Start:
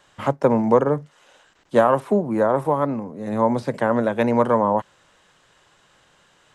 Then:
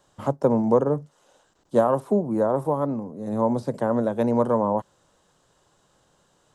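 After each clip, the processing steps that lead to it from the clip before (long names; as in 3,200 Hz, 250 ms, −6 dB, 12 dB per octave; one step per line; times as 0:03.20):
parametric band 2,200 Hz −14 dB 1.5 octaves
level −1.5 dB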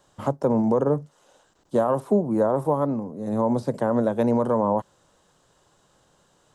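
brickwall limiter −13 dBFS, peak gain reduction 6 dB
level +1.5 dB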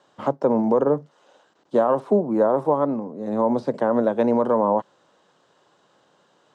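band-pass filter 220–4,300 Hz
level +3 dB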